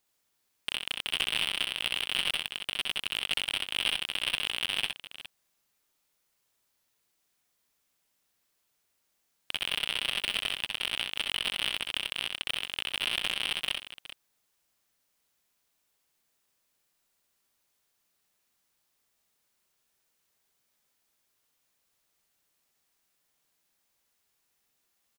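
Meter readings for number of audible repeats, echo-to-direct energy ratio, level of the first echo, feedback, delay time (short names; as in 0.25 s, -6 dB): 2, -3.5 dB, -4.5 dB, no steady repeat, 64 ms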